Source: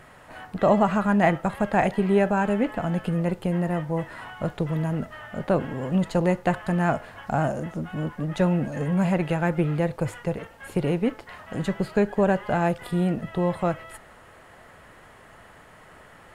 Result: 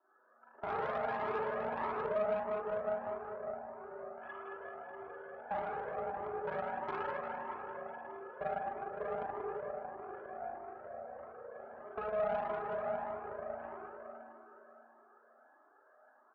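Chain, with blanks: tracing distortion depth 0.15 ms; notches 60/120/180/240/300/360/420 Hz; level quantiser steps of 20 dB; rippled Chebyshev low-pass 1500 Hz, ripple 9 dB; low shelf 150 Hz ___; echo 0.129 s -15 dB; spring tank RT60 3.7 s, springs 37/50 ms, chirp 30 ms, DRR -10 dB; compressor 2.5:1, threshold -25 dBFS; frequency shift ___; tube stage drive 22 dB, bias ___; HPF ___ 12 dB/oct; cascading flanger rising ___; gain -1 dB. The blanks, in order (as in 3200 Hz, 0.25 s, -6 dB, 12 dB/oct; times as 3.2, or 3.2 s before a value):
-6.5 dB, +230 Hz, 0.7, 83 Hz, 1.6 Hz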